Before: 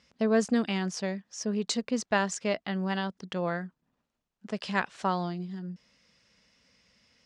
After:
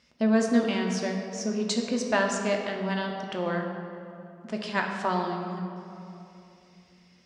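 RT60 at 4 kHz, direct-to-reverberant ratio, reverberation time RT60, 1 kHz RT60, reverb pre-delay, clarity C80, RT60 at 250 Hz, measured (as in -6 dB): 1.6 s, 1.0 dB, 2.9 s, 2.7 s, 3 ms, 5.0 dB, 3.0 s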